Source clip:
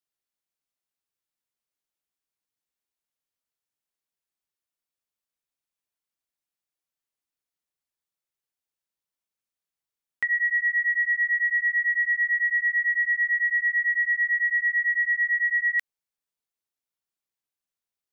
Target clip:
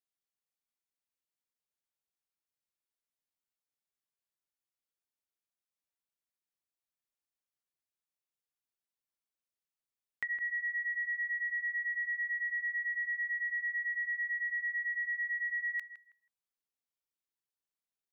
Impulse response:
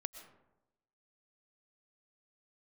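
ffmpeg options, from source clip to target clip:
-filter_complex "[0:a]acompressor=threshold=-26dB:ratio=6,asplit=2[a][b];[b]adelay=161,lowpass=f=1.8k:p=1,volume=-11dB,asplit=2[c][d];[d]adelay=161,lowpass=f=1.8k:p=1,volume=0.28,asplit=2[e][f];[f]adelay=161,lowpass=f=1.8k:p=1,volume=0.28[g];[a][c][e][g]amix=inputs=4:normalize=0,volume=-7dB"

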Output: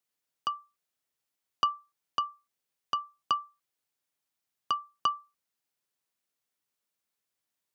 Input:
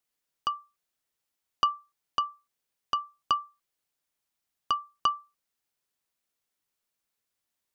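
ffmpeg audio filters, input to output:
-af "highpass=f=76:w=0.5412,highpass=f=76:w=1.3066,volume=-2dB"

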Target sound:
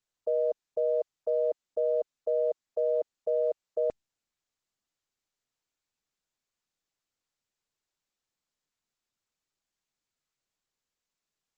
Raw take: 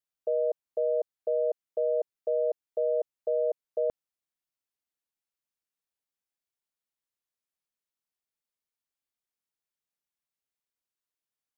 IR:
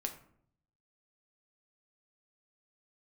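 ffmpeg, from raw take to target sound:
-ar 48000 -c:a libopus -b:a 12k

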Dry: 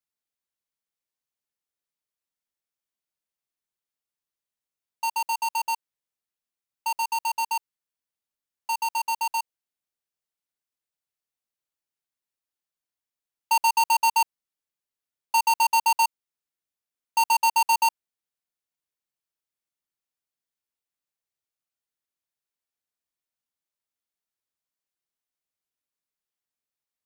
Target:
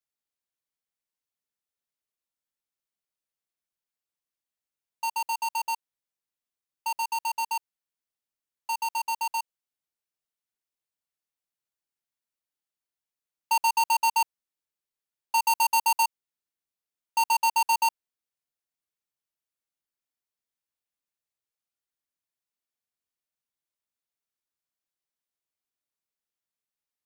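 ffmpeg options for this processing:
-filter_complex "[0:a]asettb=1/sr,asplit=3[a][b][c];[a]atrim=end=15.414[d];[b]atrim=start=15.41:end=16.03,asetpts=PTS-STARTPTS,afade=t=in:d=0.004:c=qsin,afade=t=out:st=0.616:d=0.004:c=qsin,equalizer=f=14k:w=0.49:g=5[e];[c]atrim=start=16.026[f];[d][e]acrossfade=d=0.004:c1=hsin:c2=qsin[g];[g][f]acrossfade=d=0.004:c1=qsin:c2=hsin,volume=-2.5dB"

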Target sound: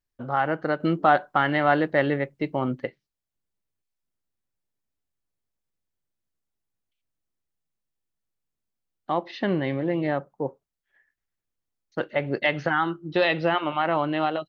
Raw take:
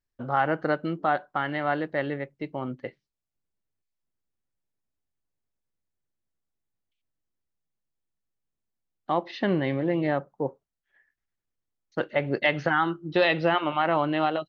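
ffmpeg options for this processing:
-filter_complex "[0:a]asettb=1/sr,asplit=3[a][b][c];[a]atrim=end=0.804[d];[b]atrim=start=0.8:end=2.86,asetpts=PTS-STARTPTS,afade=t=in:d=0.004:c=qsin,afade=t=out:st=2.056:d=0.004:c=qsin,acontrast=66[e];[c]atrim=start=2.856[f];[d][e]acrossfade=d=0.004:c1=hsin:c2=qsin[g];[g][f]acrossfade=d=0.004:c1=qsin:c2=hsin"

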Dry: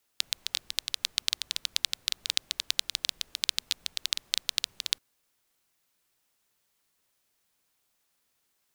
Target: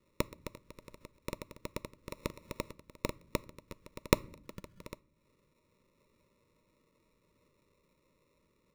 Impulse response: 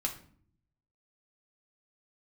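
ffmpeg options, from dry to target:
-filter_complex "[0:a]asettb=1/sr,asplit=3[a][b][c];[a]atrim=end=0.604[d];[b]atrim=start=0.6:end=1.01,asetpts=PTS-STARTPTS,afade=t=in:d=0.004:c=qsin,afade=t=out:st=0.406:d=0.004:c=qsin,acrossover=split=2700[e][f];[f]acompressor=threshold=-35dB:ratio=4:attack=1:release=60[g];[e][g]amix=inputs=2:normalize=0[h];[c]atrim=start=1.006[i];[d][h]acrossfade=d=0.004:c1=hsin:c2=qsin[j];[j][i]acrossfade=d=0.004:c1=qsin:c2=hsin,asettb=1/sr,asplit=3[k][l][m];[k]atrim=end=2.094[n];[l]atrim=start=2.09:end=2.73,asetpts=PTS-STARTPTS,afade=t=in:d=0.004:c=qsin,afade=t=out:st=0.636:d=0.004:c=qsin,asplit=2[o][p];[p]highpass=f=720:p=1,volume=25dB,asoftclip=type=tanh:threshold=-1dB[q];[o][q]amix=inputs=2:normalize=0,lowpass=f=6.6k:p=1,volume=-6dB[r];[m]atrim=start=2.726[s];[n][r]acrossfade=d=0.004:c1=hsin:c2=qsin[t];[t][s]acrossfade=d=0.004:c1=qsin:c2=hsin,acompressor=threshold=-40dB:ratio=4,aeval=exprs='0.376*(cos(1*acos(clip(val(0)/0.376,-1,1)))-cos(1*PI/2))+0.0211*(cos(6*acos(clip(val(0)/0.376,-1,1)))-cos(6*PI/2))+0.0335*(cos(7*acos(clip(val(0)/0.376,-1,1)))-cos(7*PI/2))+0.0119*(cos(8*acos(clip(val(0)/0.376,-1,1)))-cos(8*PI/2))':c=same,asettb=1/sr,asplit=3[u][v][w];[u]atrim=end=4.444[x];[v]atrim=start=4.44:end=4.85,asetpts=PTS-STARTPTS,afade=t=in:d=0.004:c=qsin,afade=t=out:st=0.406:d=0.004:c=qsin,lowshelf=f=250:t=q:w=3:g=8[y];[w]atrim=start=4.846[z];[x][y]acrossfade=d=0.004:c1=hsin:c2=qsin[aa];[aa][z]acrossfade=d=0.004:c1=qsin:c2=hsin,acrusher=samples=28:mix=1:aa=0.000001,asuperstop=centerf=750:order=12:qfactor=2.5,asplit=2[ab][ac];[1:a]atrim=start_sample=2205[ad];[ac][ad]afir=irnorm=-1:irlink=0,volume=-16.5dB[ae];[ab][ae]amix=inputs=2:normalize=0,volume=10.5dB"

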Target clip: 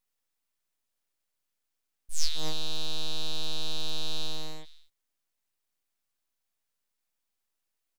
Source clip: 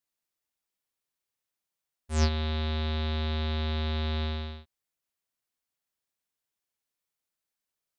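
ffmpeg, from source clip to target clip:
-af "aecho=1:1:245:0.168,aeval=exprs='abs(val(0))':c=same,volume=5.5dB"

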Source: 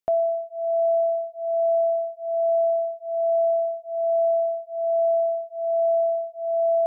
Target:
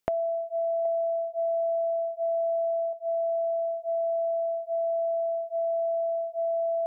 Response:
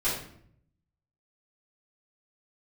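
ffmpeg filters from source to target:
-filter_complex "[0:a]asettb=1/sr,asplit=3[a][b][c];[a]atrim=end=0.854[d];[b]atrim=start=0.85:end=2.93,asetpts=PTS-STARTPTS,afade=t=in:d=0.004:c=qsin,afade=t=out:st=2.076:d=0.004:c=qsin,aecho=1:1:2.9:0.96,atrim=end_sample=91728[e];[c]atrim=start=2.926[f];[d][e]acrossfade=d=0.004:c1=hsin:c2=qsin[g];[g][f]acrossfade=d=0.004:c1=qsin:c2=hsin,acompressor=threshold=-34dB:ratio=10,volume=7.5dB"

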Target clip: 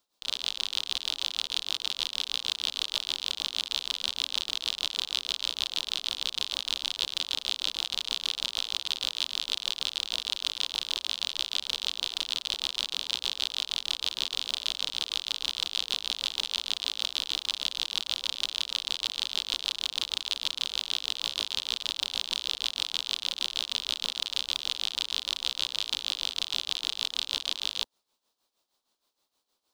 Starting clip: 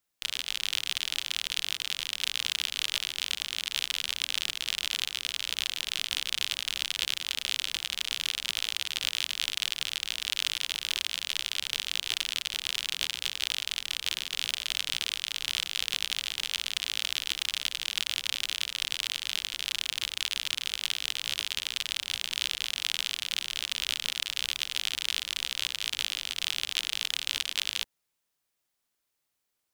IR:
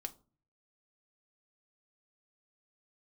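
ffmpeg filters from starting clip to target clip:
-af "equalizer=f=125:t=o:w=1:g=-9,equalizer=f=250:t=o:w=1:g=6,equalizer=f=500:t=o:w=1:g=5,equalizer=f=1k:t=o:w=1:g=8,equalizer=f=2k:t=o:w=1:g=-8,equalizer=f=4k:t=o:w=1:g=10,equalizer=f=16k:t=o:w=1:g=-6,alimiter=limit=-14.5dB:level=0:latency=1:release=19,tremolo=f=6.4:d=0.72,volume=4.5dB"

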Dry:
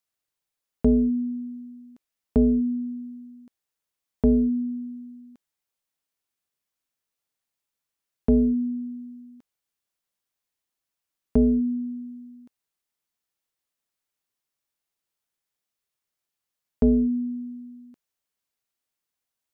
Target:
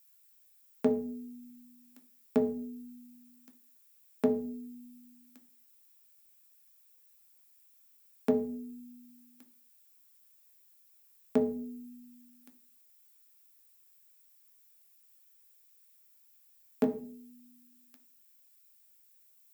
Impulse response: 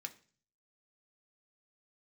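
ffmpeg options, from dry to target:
-filter_complex "[0:a]asetnsamples=n=441:p=0,asendcmd='16.84 highpass f 820',highpass=f=250:p=1,aemphasis=mode=production:type=bsi[a];[1:a]atrim=start_sample=2205,afade=t=out:st=0.37:d=0.01,atrim=end_sample=16758,asetrate=43659,aresample=44100[b];[a][b]afir=irnorm=-1:irlink=0,volume=8.5dB"

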